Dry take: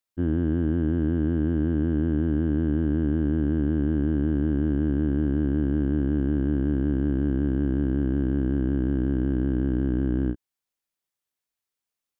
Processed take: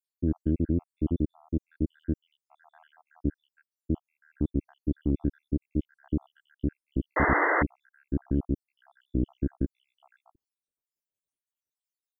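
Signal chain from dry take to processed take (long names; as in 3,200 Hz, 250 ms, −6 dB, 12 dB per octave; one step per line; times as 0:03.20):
time-frequency cells dropped at random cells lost 83%
parametric band 1,800 Hz −10.5 dB 1.5 octaves
sound drawn into the spectrogram noise, 0:07.16–0:07.63, 290–2,100 Hz −24 dBFS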